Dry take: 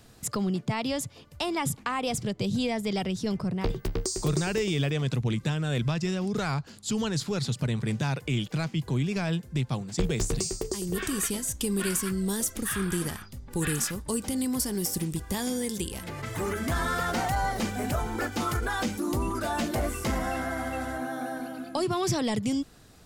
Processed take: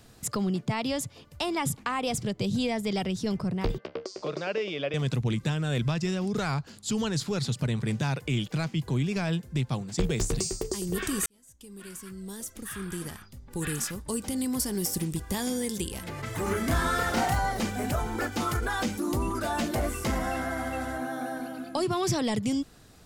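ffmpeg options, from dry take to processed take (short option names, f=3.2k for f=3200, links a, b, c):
-filter_complex "[0:a]asettb=1/sr,asplit=3[a][b][c];[a]atrim=end=3.784[d];[b]atrim=start=3.78:end=4.94,asetpts=PTS-STARTPTS,afade=t=in:d=0.004:c=qsin,afade=t=out:st=1.156:d=0.004:c=qsin,highpass=360,equalizer=f=370:t=q:w=4:g=-4,equalizer=f=570:t=q:w=4:g=9,equalizer=f=870:t=q:w=4:g=-4,equalizer=f=1.8k:t=q:w=4:g=-4,equalizer=f=3.9k:t=q:w=4:g=-6,lowpass=f=4.2k:w=0.5412,lowpass=f=4.2k:w=1.3066[e];[c]atrim=start=4.936[f];[d][e]acrossfade=d=0.004:c1=hsin:c2=qsin[g];[g][f]acrossfade=d=0.004:c1=qsin:c2=hsin,asettb=1/sr,asplit=3[h][i][j];[h]atrim=end=16.434[k];[i]atrim=start=16.43:end=17.39,asetpts=PTS-STARTPTS,afade=t=in:d=0.004:c=qsin,afade=t=out:st=0.956:d=0.004:c=qsin,asplit=2[l][m];[m]adelay=31,volume=-2.5dB[n];[l][n]amix=inputs=2:normalize=0,atrim=end_sample=42336[o];[j]atrim=start=17.386[p];[k][o]acrossfade=d=0.004:c1=hsin:c2=qsin[q];[q][p]acrossfade=d=0.004:c1=qsin:c2=hsin,asplit=2[r][s];[r]atrim=end=11.26,asetpts=PTS-STARTPTS,afade=t=out:st=11.256:d=0.004:c=hsin[t];[s]atrim=start=11.26,asetpts=PTS-STARTPTS,afade=t=in:d=3.54[u];[t][u]concat=n=2:v=0:a=1"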